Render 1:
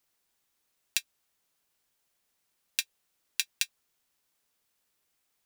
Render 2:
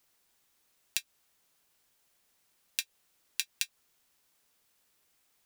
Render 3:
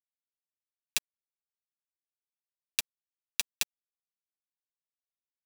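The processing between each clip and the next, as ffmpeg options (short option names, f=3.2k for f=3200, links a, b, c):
-af "acompressor=threshold=-30dB:ratio=6,alimiter=limit=-9dB:level=0:latency=1:release=26,volume=5dB"
-af "acrusher=bits=4:mix=0:aa=0.000001,volume=2dB"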